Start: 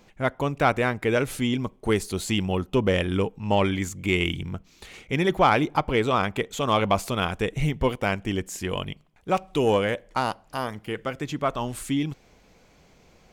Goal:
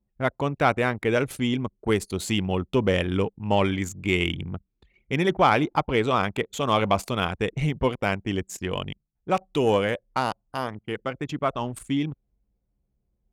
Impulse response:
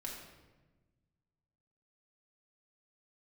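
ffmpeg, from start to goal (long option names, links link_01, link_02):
-af "anlmdn=3.98,highpass=48"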